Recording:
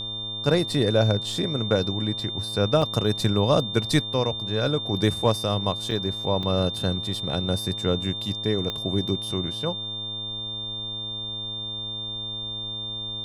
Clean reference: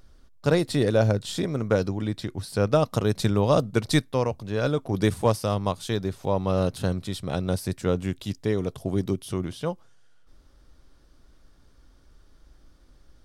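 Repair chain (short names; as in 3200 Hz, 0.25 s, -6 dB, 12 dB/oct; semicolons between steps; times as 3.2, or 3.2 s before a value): de-click; de-hum 108.6 Hz, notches 11; notch 3600 Hz, Q 30; interpolate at 2.82/5.91/6.43, 3.5 ms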